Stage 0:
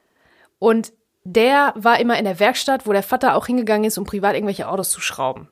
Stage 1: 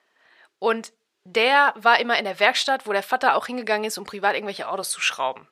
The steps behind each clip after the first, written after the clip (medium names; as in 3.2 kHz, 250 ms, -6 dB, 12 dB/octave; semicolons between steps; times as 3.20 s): band-pass filter 3.8 kHz, Q 0.68; treble shelf 2.6 kHz -10.5 dB; trim +8 dB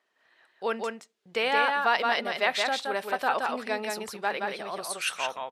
delay 172 ms -3.5 dB; trim -8 dB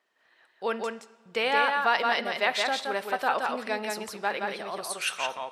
reverberation, pre-delay 3 ms, DRR 14 dB